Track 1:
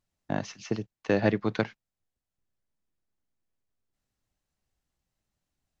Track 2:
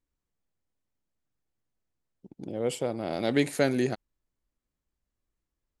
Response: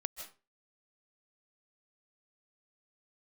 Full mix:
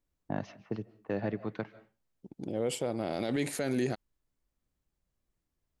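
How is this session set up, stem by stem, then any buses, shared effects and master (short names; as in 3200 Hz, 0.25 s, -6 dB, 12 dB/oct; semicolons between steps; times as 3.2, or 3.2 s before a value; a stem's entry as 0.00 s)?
-4.0 dB, 0.00 s, send -13.5 dB, LPF 1700 Hz 6 dB/oct; low-pass opened by the level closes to 590 Hz, open at -26.5 dBFS; auto duck -14 dB, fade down 1.85 s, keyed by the second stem
+0.5 dB, 0.00 s, no send, dry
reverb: on, RT60 0.30 s, pre-delay 0.115 s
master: limiter -21.5 dBFS, peak gain reduction 11.5 dB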